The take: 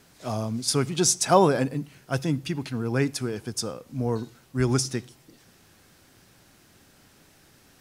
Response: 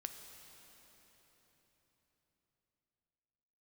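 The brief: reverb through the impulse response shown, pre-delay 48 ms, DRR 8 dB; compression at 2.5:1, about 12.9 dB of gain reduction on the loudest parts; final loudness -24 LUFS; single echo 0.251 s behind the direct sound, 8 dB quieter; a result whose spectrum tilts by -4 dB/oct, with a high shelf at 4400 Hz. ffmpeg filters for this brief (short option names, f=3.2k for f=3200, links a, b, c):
-filter_complex "[0:a]highshelf=f=4.4k:g=5.5,acompressor=threshold=-33dB:ratio=2.5,aecho=1:1:251:0.398,asplit=2[a][b];[1:a]atrim=start_sample=2205,adelay=48[c];[b][c]afir=irnorm=-1:irlink=0,volume=-5dB[d];[a][d]amix=inputs=2:normalize=0,volume=9dB"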